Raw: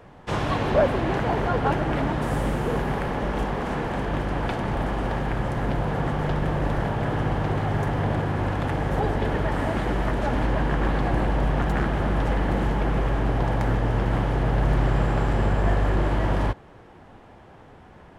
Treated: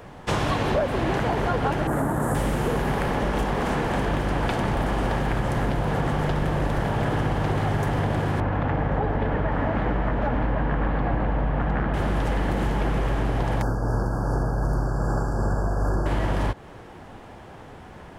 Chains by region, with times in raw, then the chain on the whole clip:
1.87–2.35 CVSD 64 kbps + HPF 66 Hz + band shelf 3600 Hz -15.5 dB
8.4–11.94 LPF 2000 Hz + notch 370 Hz, Q 8.1
13.62–16.06 tremolo 2.6 Hz, depth 41% + brick-wall FIR band-stop 1700–4400 Hz
whole clip: high shelf 5200 Hz +7.5 dB; compressor, threshold -25 dBFS; gain +5 dB

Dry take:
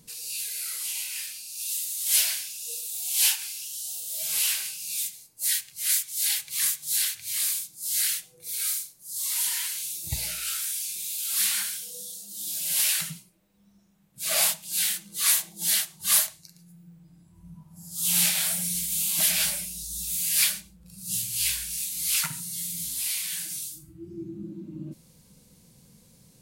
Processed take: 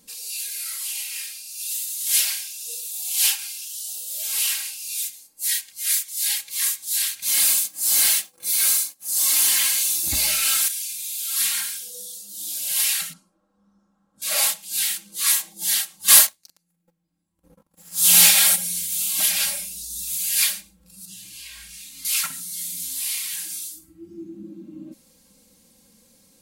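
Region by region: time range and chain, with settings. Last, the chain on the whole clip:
7.22–10.68 sample leveller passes 3 + notch comb 470 Hz
13.13–14.22 LPF 7800 Hz + resonant high shelf 1700 Hz -9 dB, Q 3
16.08–18.56 sample leveller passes 3 + upward expander, over -33 dBFS
21.05–22.05 LPF 2200 Hz 6 dB/oct + compressor 10:1, threshold -37 dBFS
whole clip: low shelf 180 Hz -9 dB; comb 3.7 ms, depth 86%

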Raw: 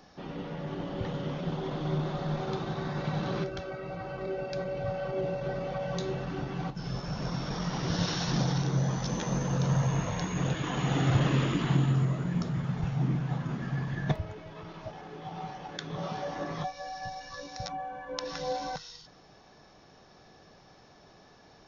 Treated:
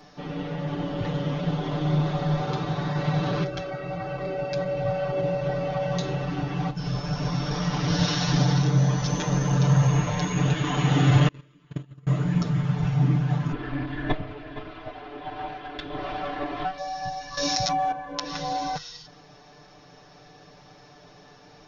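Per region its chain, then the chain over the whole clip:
11.28–12.07 gate -21 dBFS, range -35 dB + Butterworth band-stop 790 Hz, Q 5.1
13.52–16.78 minimum comb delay 2.9 ms + LPF 3900 Hz 24 dB/oct + echo 0.466 s -14 dB
17.37–17.92 high shelf 3000 Hz +10 dB + fast leveller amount 100%
whole clip: bell 2600 Hz +2 dB; comb 6.8 ms, depth 94%; gain +2.5 dB

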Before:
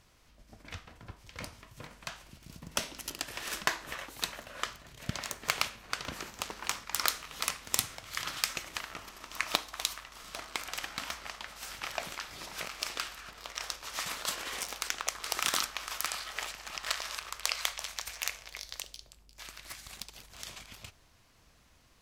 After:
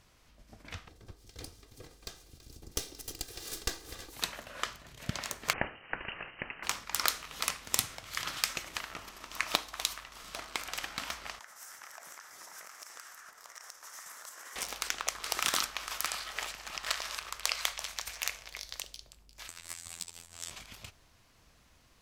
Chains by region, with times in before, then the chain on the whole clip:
0.88–4.13 minimum comb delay 2.5 ms + band shelf 1500 Hz -9 dB 2.3 oct + echo 0.33 s -17 dB
5.53–6.63 HPF 78 Hz + inverted band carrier 3000 Hz
11.39–14.56 HPF 1400 Hz 6 dB/oct + band shelf 3300 Hz -13 dB 1.2 oct + compressor 5:1, threshold -44 dBFS
19.48–20.51 bell 8000 Hz +12.5 dB 0.42 oct + robotiser 84.6 Hz
whole clip: dry

